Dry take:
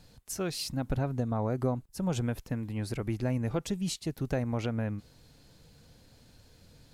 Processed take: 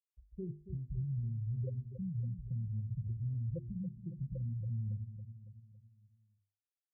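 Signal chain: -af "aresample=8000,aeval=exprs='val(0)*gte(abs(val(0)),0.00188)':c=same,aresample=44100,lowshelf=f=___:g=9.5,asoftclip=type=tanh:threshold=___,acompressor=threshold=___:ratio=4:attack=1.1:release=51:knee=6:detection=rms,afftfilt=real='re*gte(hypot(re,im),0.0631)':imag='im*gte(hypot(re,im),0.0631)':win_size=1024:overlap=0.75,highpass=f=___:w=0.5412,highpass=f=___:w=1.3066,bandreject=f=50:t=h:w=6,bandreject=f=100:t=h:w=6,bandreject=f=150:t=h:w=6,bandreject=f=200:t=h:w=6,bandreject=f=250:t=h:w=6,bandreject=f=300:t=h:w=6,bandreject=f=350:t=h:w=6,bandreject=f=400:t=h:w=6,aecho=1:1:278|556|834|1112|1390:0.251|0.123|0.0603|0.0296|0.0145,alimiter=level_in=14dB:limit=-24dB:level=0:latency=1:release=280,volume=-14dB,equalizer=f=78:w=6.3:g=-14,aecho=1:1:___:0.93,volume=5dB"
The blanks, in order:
170, -18dB, -39dB, 49, 49, 1.8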